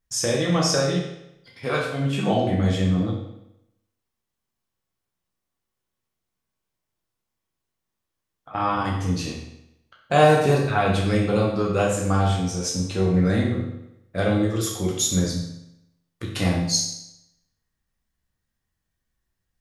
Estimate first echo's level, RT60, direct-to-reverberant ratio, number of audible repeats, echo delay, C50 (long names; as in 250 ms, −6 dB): no echo audible, 0.85 s, −3.5 dB, no echo audible, no echo audible, 3.0 dB